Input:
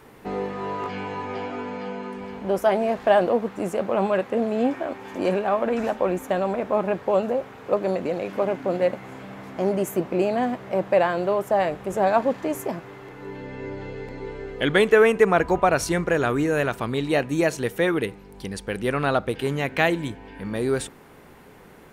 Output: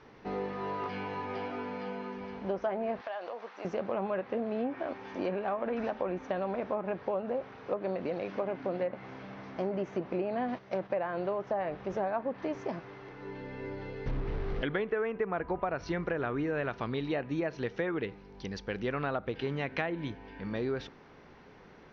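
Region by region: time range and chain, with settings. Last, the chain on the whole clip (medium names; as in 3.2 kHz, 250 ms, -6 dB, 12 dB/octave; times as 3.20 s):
3.01–3.65 s: high-pass 700 Hz + compression, threshold -29 dBFS
10.48–10.90 s: self-modulated delay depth 0.078 ms + gate -36 dBFS, range -9 dB + treble shelf 4.7 kHz +11.5 dB
14.06–14.63 s: one-bit comparator + RIAA curve playback
whole clip: Chebyshev low-pass 6 kHz, order 6; low-pass that closes with the level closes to 2.1 kHz, closed at -17.5 dBFS; compression 6:1, threshold -23 dBFS; trim -5.5 dB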